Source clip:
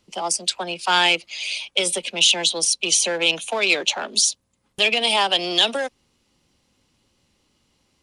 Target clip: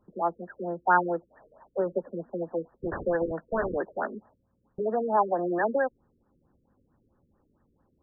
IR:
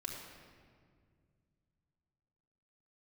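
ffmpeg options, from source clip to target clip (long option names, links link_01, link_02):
-filter_complex "[0:a]asettb=1/sr,asplit=3[link_01][link_02][link_03];[link_01]atrim=end=2.764[link_04];[link_02]atrim=start=2.76:end=3.77,asetpts=PTS-STARTPTS,afade=type=in:duration=0.004:curve=qsin,afade=type=out:start_time=1.006:duration=0.004:curve=qsin,aeval=exprs='(mod(6.31*val(0)+1,2)-1)/6.31':channel_layout=same[link_05];[link_03]atrim=start=3.766[link_06];[link_04][link_05]acrossfade=duration=0.004:curve1=hsin:curve2=qsin[link_07];[link_07][link_06]acrossfade=duration=0.004:curve1=qsin:curve2=hsin,afftfilt=real='re*lt(b*sr/1024,500*pow(1900/500,0.5+0.5*sin(2*PI*4.5*pts/sr)))':imag='im*lt(b*sr/1024,500*pow(1900/500,0.5+0.5*sin(2*PI*4.5*pts/sr)))':win_size=1024:overlap=0.75"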